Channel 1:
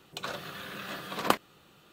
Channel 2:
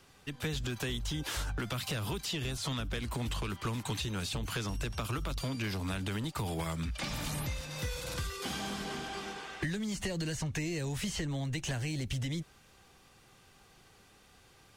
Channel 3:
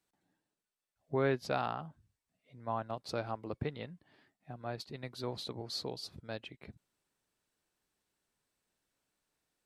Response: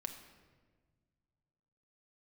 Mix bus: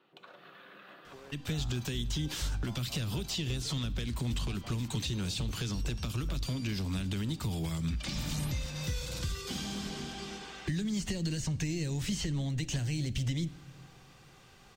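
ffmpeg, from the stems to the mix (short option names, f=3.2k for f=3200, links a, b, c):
-filter_complex "[0:a]acompressor=threshold=-37dB:ratio=6,volume=-9dB,asplit=2[a][b];[b]volume=-12dB[c];[1:a]equalizer=f=11k:t=o:w=0.47:g=-11,acrossover=split=330|3000[d][e][f];[e]acompressor=threshold=-50dB:ratio=6[g];[d][g][f]amix=inputs=3:normalize=0,adelay=1050,volume=0dB,asplit=2[h][i];[i]volume=-4.5dB[j];[2:a]volume=-5dB[k];[a][k]amix=inputs=2:normalize=0,highpass=210,lowpass=3.3k,acompressor=threshold=-51dB:ratio=6,volume=0dB[l];[3:a]atrim=start_sample=2205[m];[c][j]amix=inputs=2:normalize=0[n];[n][m]afir=irnorm=-1:irlink=0[o];[h][l][o]amix=inputs=3:normalize=0"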